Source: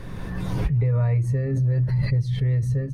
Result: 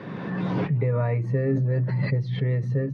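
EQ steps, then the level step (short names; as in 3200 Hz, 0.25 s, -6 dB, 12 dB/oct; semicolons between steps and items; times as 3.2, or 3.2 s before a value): HPF 160 Hz 24 dB/oct; air absorption 280 m; +6.0 dB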